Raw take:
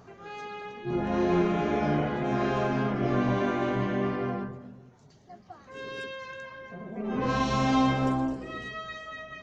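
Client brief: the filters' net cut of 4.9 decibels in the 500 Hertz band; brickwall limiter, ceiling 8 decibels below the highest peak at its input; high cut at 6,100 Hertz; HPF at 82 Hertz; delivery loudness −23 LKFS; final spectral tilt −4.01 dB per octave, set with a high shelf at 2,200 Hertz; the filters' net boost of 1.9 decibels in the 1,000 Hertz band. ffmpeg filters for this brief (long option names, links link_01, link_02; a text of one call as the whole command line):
ffmpeg -i in.wav -af "highpass=82,lowpass=6100,equalizer=frequency=500:width_type=o:gain=-8.5,equalizer=frequency=1000:width_type=o:gain=6.5,highshelf=frequency=2200:gain=-7.5,volume=9.5dB,alimiter=limit=-12dB:level=0:latency=1" out.wav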